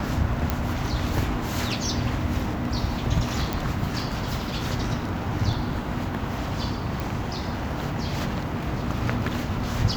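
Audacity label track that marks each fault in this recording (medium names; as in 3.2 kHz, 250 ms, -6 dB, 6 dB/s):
0.500000	0.500000	pop -9 dBFS
3.530000	3.530000	pop
7.000000	7.000000	pop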